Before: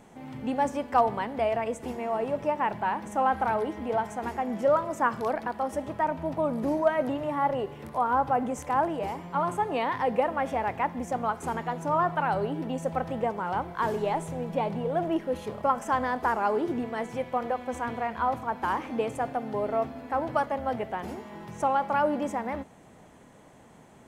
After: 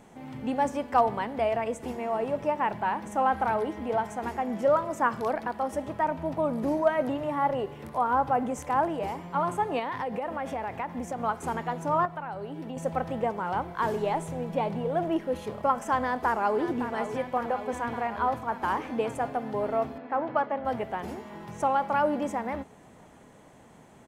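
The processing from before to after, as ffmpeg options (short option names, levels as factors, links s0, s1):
-filter_complex "[0:a]asettb=1/sr,asplit=3[s0][s1][s2];[s0]atrim=end=9.794[s3];[s1]atrim=start=9.79:end=11.2,asetpts=PTS-STARTPTS,afade=t=in:d=0.004:c=qsin,afade=t=out:st=1.406:d=0.004:c=qsin,acompressor=threshold=0.0398:ratio=6:attack=3.2:release=140:knee=1:detection=peak[s4];[s2]atrim=start=11.196[s5];[s3][s4]acrossfade=d=0.004:c1=hsin:c2=qsin[s6];[s6][s5]acrossfade=d=0.004:c1=qsin:c2=hsin,asettb=1/sr,asplit=3[s7][s8][s9];[s7]atrim=end=12.054[s10];[s8]atrim=start=12.05:end=12.77,asetpts=PTS-STARTPTS,afade=t=in:d=0.004:c=qsin,afade=t=out:st=0.716:d=0.004:c=qsin,acrossover=split=100|1900[s11][s12][s13];[s11]acompressor=threshold=0.00126:ratio=4[s14];[s12]acompressor=threshold=0.0178:ratio=4[s15];[s13]acompressor=threshold=0.00158:ratio=4[s16];[s14][s15][s16]amix=inputs=3:normalize=0[s17];[s9]atrim=start=12.766[s18];[s10][s17]acrossfade=d=0.004:c1=hsin:c2=qsin[s19];[s19][s18]acrossfade=d=0.004:c1=qsin:c2=hsin,asplit=2[s20][s21];[s21]afade=t=in:st=16.02:d=0.01,afade=t=out:st=16.61:d=0.01,aecho=0:1:560|1120|1680|2240|2800|3360|3920|4480|5040|5600|6160|6720:0.316228|0.237171|0.177878|0.133409|0.100056|0.0750423|0.0562817|0.0422113|0.0316585|0.0237439|0.0178079|0.0133559[s22];[s20][s22]amix=inputs=2:normalize=0,asettb=1/sr,asplit=3[s23][s24][s25];[s23]atrim=end=19.984[s26];[s24]atrim=start=19.98:end=20.65,asetpts=PTS-STARTPTS,afade=t=in:d=0.004:c=qsin,afade=t=out:st=0.666:d=0.004:c=qsin,highpass=180,lowpass=2800[s27];[s25]atrim=start=20.646[s28];[s26][s27]acrossfade=d=0.004:c1=hsin:c2=qsin[s29];[s29][s28]acrossfade=d=0.004:c1=qsin:c2=hsin"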